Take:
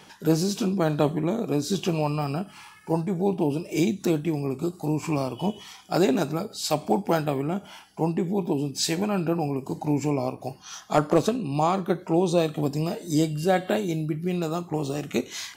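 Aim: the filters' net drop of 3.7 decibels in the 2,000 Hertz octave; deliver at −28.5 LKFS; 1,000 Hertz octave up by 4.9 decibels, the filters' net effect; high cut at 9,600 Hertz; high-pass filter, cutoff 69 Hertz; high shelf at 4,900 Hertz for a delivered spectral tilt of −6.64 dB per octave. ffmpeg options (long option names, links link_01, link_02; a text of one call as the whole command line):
ffmpeg -i in.wav -af "highpass=69,lowpass=9600,equalizer=frequency=1000:width_type=o:gain=8.5,equalizer=frequency=2000:width_type=o:gain=-8,highshelf=frequency=4900:gain=-3,volume=-3.5dB" out.wav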